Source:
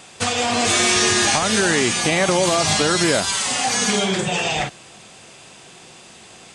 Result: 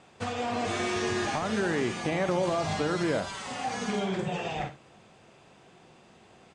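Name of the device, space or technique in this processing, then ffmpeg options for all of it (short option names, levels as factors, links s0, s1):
through cloth: -af "lowpass=8900,highshelf=f=2600:g=-16,aecho=1:1:61|74:0.211|0.158,volume=0.398"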